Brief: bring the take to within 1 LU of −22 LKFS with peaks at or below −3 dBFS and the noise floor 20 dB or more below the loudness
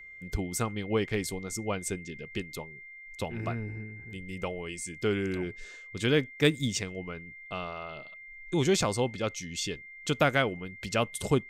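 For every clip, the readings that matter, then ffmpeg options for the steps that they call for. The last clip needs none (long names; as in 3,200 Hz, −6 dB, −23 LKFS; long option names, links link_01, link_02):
interfering tone 2,100 Hz; level of the tone −45 dBFS; integrated loudness −31.5 LKFS; sample peak −10.0 dBFS; target loudness −22.0 LKFS
→ -af "bandreject=frequency=2100:width=30"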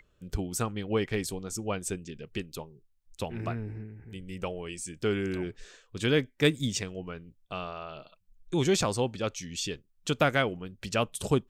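interfering tone none found; integrated loudness −31.5 LKFS; sample peak −10.0 dBFS; target loudness −22.0 LKFS
→ -af "volume=9.5dB,alimiter=limit=-3dB:level=0:latency=1"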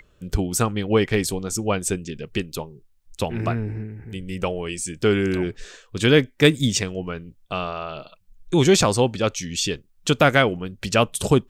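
integrated loudness −22.0 LKFS; sample peak −3.0 dBFS; background noise floor −58 dBFS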